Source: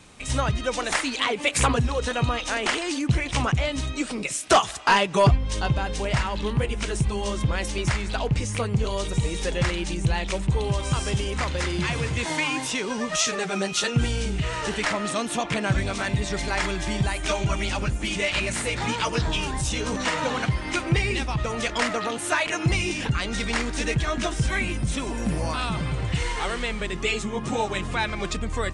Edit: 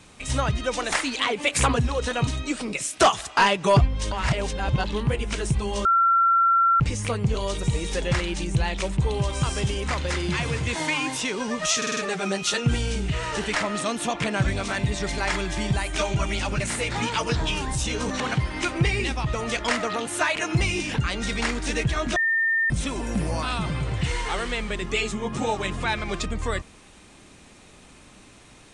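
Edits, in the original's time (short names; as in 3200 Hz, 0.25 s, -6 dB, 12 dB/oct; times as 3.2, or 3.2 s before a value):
2.27–3.77 cut
5.62–6.34 reverse
7.35–8.3 bleep 1360 Hz -15.5 dBFS
13.27 stutter 0.05 s, 5 plays
17.9–18.46 cut
20.06–20.31 cut
24.27–24.81 bleep 1810 Hz -19 dBFS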